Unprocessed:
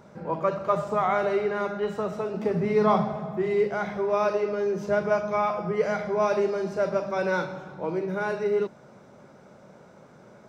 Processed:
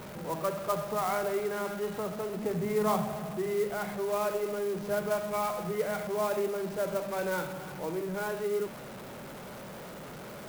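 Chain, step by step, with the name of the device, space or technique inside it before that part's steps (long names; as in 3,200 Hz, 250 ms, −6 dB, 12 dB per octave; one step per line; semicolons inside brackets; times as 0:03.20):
early CD player with a faulty converter (converter with a step at zero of −31.5 dBFS; converter with an unsteady clock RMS 0.036 ms)
level −7.5 dB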